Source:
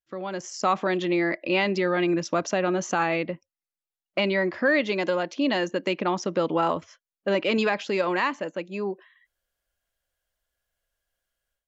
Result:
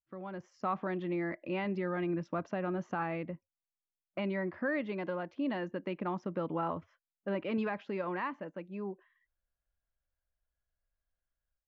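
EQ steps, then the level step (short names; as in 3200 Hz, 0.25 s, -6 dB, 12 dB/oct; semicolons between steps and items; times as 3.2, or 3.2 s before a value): LPF 1100 Hz 12 dB/oct; bell 500 Hz -12 dB 2.8 oct; 0.0 dB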